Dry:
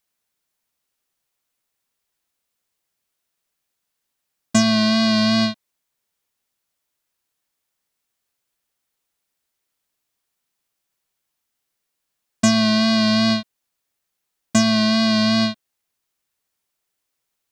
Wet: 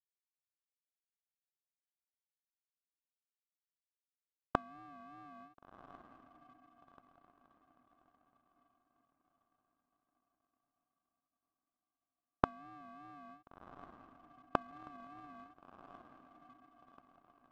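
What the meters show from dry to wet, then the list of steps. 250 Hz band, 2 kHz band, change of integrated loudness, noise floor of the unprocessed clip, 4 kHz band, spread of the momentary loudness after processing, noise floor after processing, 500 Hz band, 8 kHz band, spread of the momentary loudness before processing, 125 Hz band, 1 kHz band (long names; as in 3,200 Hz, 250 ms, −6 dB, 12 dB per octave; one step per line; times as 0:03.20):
−32.5 dB, −25.5 dB, −26.0 dB, −79 dBFS, below −40 dB, 24 LU, below −85 dBFS, −22.0 dB, below −40 dB, 5 LU, −25.5 dB, −14.5 dB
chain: downward expander −21 dBFS
elliptic high-pass filter 1,400 Hz, stop band 50 dB
gate with flip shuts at −13 dBFS, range −26 dB
voice inversion scrambler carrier 2,700 Hz
feedback delay with all-pass diffusion 1,399 ms, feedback 49%, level −7 dB
power curve on the samples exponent 1.4
level +15 dB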